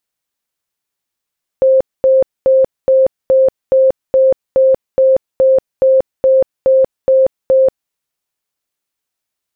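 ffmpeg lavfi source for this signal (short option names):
-f lavfi -i "aevalsrc='0.501*sin(2*PI*528*mod(t,0.42))*lt(mod(t,0.42),98/528)':d=6.3:s=44100"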